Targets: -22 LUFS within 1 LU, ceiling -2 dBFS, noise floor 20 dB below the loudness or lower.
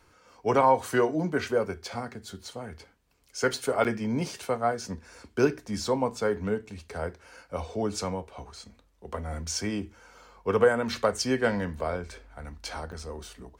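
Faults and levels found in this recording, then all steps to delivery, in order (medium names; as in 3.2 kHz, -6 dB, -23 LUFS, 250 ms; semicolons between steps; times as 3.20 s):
dropouts 2; longest dropout 8.2 ms; loudness -29.0 LUFS; peak level -9.5 dBFS; loudness target -22.0 LUFS
-> interpolate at 3.84/12.92 s, 8.2 ms; trim +7 dB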